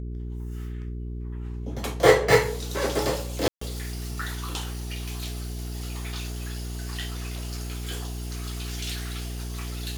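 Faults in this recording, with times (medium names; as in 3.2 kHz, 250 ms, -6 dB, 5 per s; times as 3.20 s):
hum 60 Hz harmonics 7 -33 dBFS
3.48–3.61 s: dropout 134 ms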